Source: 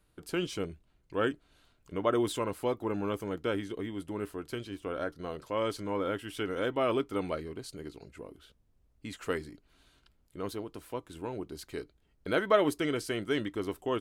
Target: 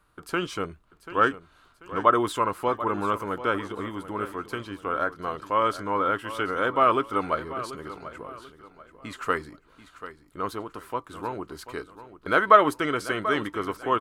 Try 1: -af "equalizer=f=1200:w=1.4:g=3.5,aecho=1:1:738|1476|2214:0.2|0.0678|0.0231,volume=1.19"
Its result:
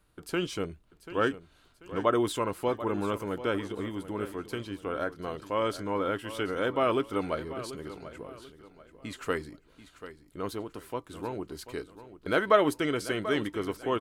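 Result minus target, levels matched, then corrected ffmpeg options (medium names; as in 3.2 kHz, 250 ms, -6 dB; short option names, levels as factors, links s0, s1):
1 kHz band -4.0 dB
-af "equalizer=f=1200:w=1.4:g=14.5,aecho=1:1:738|1476|2214:0.2|0.0678|0.0231,volume=1.19"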